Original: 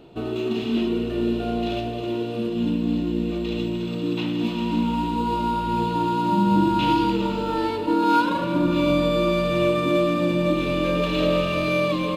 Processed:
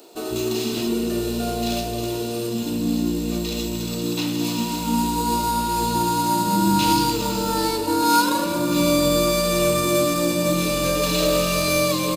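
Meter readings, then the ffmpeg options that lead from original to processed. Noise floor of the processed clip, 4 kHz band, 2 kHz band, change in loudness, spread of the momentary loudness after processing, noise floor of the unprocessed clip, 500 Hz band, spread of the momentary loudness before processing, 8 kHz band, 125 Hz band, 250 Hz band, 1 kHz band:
−27 dBFS, +6.5 dB, +1.5 dB, +1.5 dB, 8 LU, −28 dBFS, +1.0 dB, 7 LU, can't be measured, 0.0 dB, −0.5 dB, +2.0 dB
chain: -filter_complex "[0:a]aexciter=amount=9.3:drive=5.3:freq=4600,asplit=2[link_01][link_02];[link_02]asoftclip=type=tanh:threshold=-20.5dB,volume=-5dB[link_03];[link_01][link_03]amix=inputs=2:normalize=0,aeval=exprs='0.631*(cos(1*acos(clip(val(0)/0.631,-1,1)))-cos(1*PI/2))+0.0447*(cos(3*acos(clip(val(0)/0.631,-1,1)))-cos(3*PI/2))':channel_layout=same,acrossover=split=280[link_04][link_05];[link_04]adelay=150[link_06];[link_06][link_05]amix=inputs=2:normalize=0,volume=1dB"

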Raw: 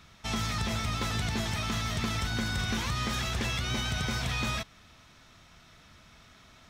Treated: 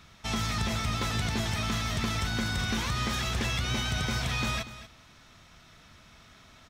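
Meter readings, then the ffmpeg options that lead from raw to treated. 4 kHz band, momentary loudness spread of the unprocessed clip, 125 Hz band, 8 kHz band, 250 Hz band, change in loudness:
+1.0 dB, 2 LU, +1.0 dB, +1.0 dB, +1.0 dB, +1.0 dB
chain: -af "aecho=1:1:238:0.188,volume=1dB"

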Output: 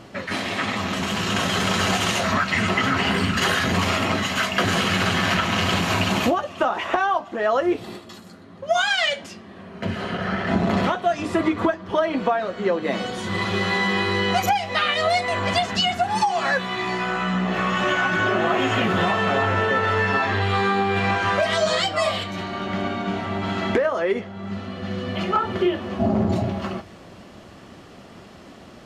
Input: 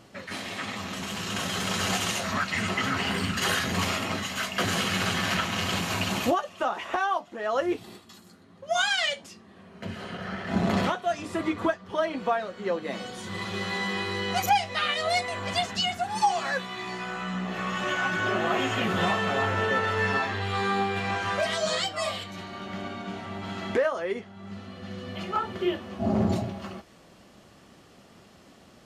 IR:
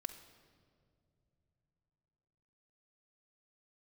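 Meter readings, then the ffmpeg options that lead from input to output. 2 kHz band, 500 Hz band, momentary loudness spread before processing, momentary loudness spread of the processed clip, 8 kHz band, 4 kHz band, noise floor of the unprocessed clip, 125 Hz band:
+6.0 dB, +6.5 dB, 11 LU, 7 LU, +2.0 dB, +5.0 dB, −54 dBFS, +7.0 dB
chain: -filter_complex "[0:a]highshelf=frequency=5300:gain=-9,acompressor=threshold=-27dB:ratio=6,asplit=2[link_01][link_02];[1:a]atrim=start_sample=2205[link_03];[link_02][link_03]afir=irnorm=-1:irlink=0,volume=-8dB[link_04];[link_01][link_04]amix=inputs=2:normalize=0,volume=8dB"

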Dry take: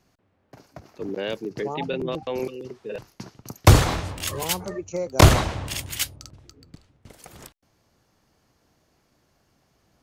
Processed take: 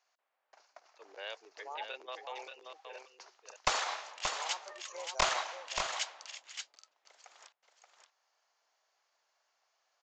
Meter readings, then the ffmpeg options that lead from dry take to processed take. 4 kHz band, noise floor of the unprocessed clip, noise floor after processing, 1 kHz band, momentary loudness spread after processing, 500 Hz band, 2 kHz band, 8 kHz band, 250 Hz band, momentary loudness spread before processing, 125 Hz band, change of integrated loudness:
−8.0 dB, −67 dBFS, −81 dBFS, −9.0 dB, 19 LU, −17.0 dB, −8.5 dB, −10.5 dB, −31.5 dB, 20 LU, −38.5 dB, −14.0 dB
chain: -af "highpass=frequency=680:width=0.5412,highpass=frequency=680:width=1.3066,aresample=16000,aeval=exprs='clip(val(0),-1,0.141)':channel_layout=same,aresample=44100,aecho=1:1:578:0.501,volume=-8.5dB"

